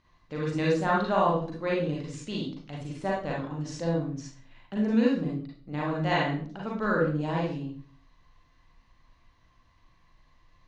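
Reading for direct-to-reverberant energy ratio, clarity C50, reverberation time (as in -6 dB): -5.0 dB, 1.0 dB, 0.50 s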